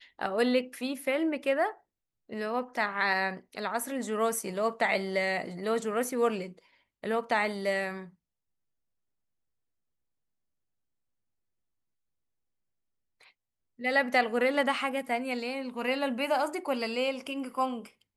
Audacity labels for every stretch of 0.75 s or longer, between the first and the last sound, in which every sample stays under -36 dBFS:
8.010000	13.810000	silence